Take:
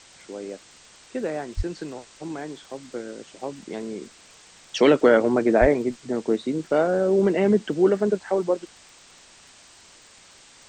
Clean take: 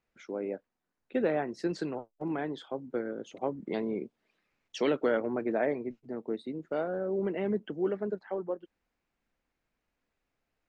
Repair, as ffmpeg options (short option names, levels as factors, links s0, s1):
-filter_complex "[0:a]adeclick=t=4,asplit=3[s0][s1][s2];[s0]afade=t=out:st=1.56:d=0.02[s3];[s1]highpass=f=140:w=0.5412,highpass=f=140:w=1.3066,afade=t=in:st=1.56:d=0.02,afade=t=out:st=1.68:d=0.02[s4];[s2]afade=t=in:st=1.68:d=0.02[s5];[s3][s4][s5]amix=inputs=3:normalize=0,asplit=3[s6][s7][s8];[s6]afade=t=out:st=5.6:d=0.02[s9];[s7]highpass=f=140:w=0.5412,highpass=f=140:w=1.3066,afade=t=in:st=5.6:d=0.02,afade=t=out:st=5.72:d=0.02[s10];[s8]afade=t=in:st=5.72:d=0.02[s11];[s9][s10][s11]amix=inputs=3:normalize=0,afwtdn=0.0045,asetnsamples=n=441:p=0,asendcmd='4.07 volume volume -11.5dB',volume=1"